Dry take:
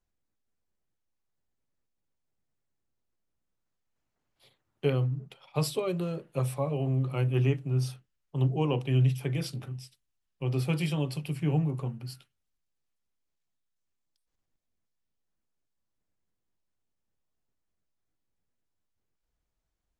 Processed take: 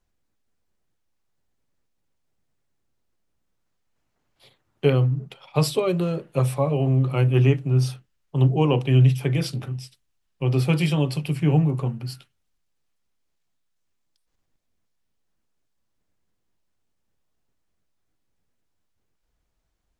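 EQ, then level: treble shelf 9.9 kHz -5.5 dB; +8.0 dB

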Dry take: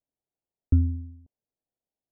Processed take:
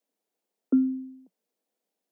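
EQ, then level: steep high-pass 180 Hz 96 dB/octave; peaking EQ 470 Hz +5 dB 0.23 oct; +8.5 dB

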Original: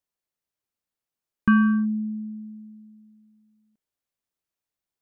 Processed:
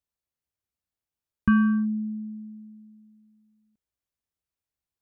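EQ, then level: peaking EQ 63 Hz +13.5 dB 1.7 oct; -4.0 dB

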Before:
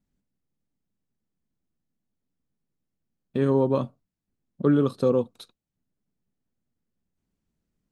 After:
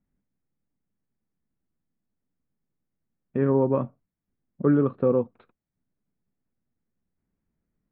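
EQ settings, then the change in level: steep low-pass 2.3 kHz 36 dB/octave; 0.0 dB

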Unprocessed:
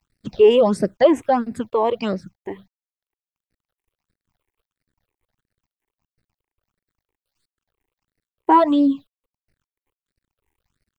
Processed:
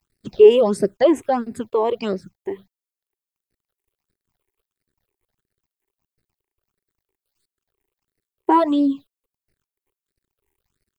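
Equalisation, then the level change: peaking EQ 390 Hz +8.5 dB 0.37 oct; treble shelf 6.4 kHz +8.5 dB; band-stop 5.7 kHz, Q 24; -3.0 dB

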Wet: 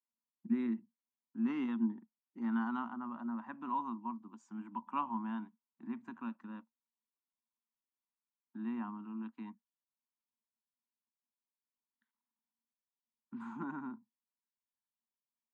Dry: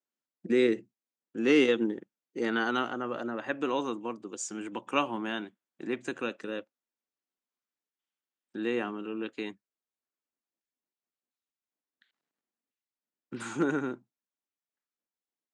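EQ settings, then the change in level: two resonant band-passes 470 Hz, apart 2.1 oct; +1.5 dB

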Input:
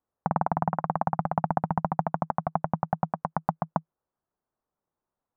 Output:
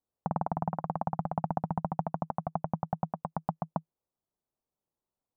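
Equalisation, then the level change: peaking EQ 1.7 kHz -9 dB 1.4 oct; -3.5 dB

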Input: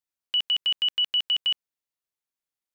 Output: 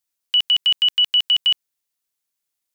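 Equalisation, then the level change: treble shelf 3.4 kHz +9 dB; +3.5 dB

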